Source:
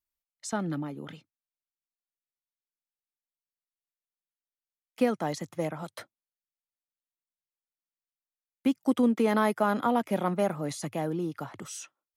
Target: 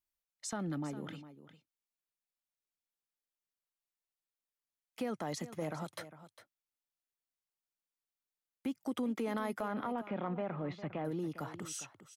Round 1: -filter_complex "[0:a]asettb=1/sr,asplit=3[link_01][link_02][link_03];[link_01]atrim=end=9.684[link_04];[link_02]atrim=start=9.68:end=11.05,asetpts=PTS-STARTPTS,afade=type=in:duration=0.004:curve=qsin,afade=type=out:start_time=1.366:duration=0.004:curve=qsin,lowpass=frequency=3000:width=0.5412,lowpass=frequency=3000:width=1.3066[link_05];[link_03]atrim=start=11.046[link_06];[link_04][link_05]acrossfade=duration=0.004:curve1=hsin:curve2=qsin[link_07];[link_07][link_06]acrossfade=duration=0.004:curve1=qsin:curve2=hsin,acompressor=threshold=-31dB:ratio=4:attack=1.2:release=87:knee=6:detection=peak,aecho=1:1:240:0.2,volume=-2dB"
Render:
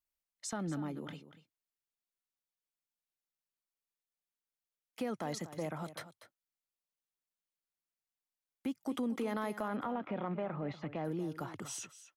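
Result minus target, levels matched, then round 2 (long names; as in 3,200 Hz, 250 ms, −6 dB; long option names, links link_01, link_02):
echo 164 ms early
-filter_complex "[0:a]asettb=1/sr,asplit=3[link_01][link_02][link_03];[link_01]atrim=end=9.684[link_04];[link_02]atrim=start=9.68:end=11.05,asetpts=PTS-STARTPTS,afade=type=in:duration=0.004:curve=qsin,afade=type=out:start_time=1.366:duration=0.004:curve=qsin,lowpass=frequency=3000:width=0.5412,lowpass=frequency=3000:width=1.3066[link_05];[link_03]atrim=start=11.046[link_06];[link_04][link_05]acrossfade=duration=0.004:curve1=hsin:curve2=qsin[link_07];[link_07][link_06]acrossfade=duration=0.004:curve1=qsin:curve2=hsin,acompressor=threshold=-31dB:ratio=4:attack=1.2:release=87:knee=6:detection=peak,aecho=1:1:404:0.2,volume=-2dB"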